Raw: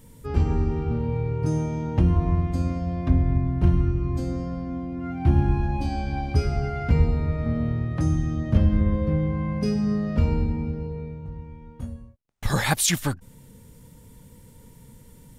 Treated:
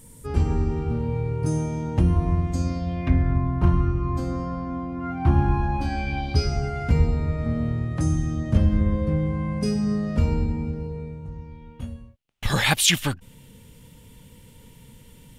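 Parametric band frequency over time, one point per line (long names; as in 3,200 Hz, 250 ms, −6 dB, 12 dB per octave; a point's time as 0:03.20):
parametric band +11 dB 0.85 octaves
0:02.42 9,200 Hz
0:03.42 1,100 Hz
0:05.71 1,100 Hz
0:06.69 8,400 Hz
0:11.24 8,400 Hz
0:11.70 2,900 Hz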